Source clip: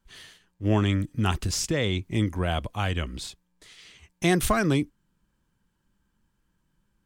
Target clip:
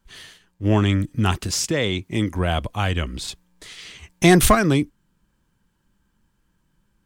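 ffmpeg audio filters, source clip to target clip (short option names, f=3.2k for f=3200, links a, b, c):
-filter_complex "[0:a]asettb=1/sr,asplit=3[a][b][c];[a]atrim=end=1.344[d];[b]atrim=start=1.34:end=2.35,asetpts=PTS-STARTPTS,afade=t=in:d=0.004:c=qsin,afade=t=out:st=1.006:d=0.004:c=qsin,highpass=f=150:p=1[e];[c]atrim=start=2.346[f];[d][e]acrossfade=d=0.004:c1=hsin:c2=qsin[g];[g][f]acrossfade=d=0.004:c1=qsin:c2=hsin,asettb=1/sr,asplit=3[h][i][j];[h]atrim=end=3.284[k];[i]atrim=start=3.28:end=4.55,asetpts=PTS-STARTPTS,afade=t=in:d=0.004:c=qsin,afade=t=out:st=1.266:d=0.004:c=qsin,acontrast=31[l];[j]atrim=start=4.546[m];[k][l]acrossfade=d=0.004:c1=hsin:c2=qsin[n];[n][m]acrossfade=d=0.004:c1=qsin:c2=hsin,asoftclip=type=tanh:threshold=-7dB,volume=5dB"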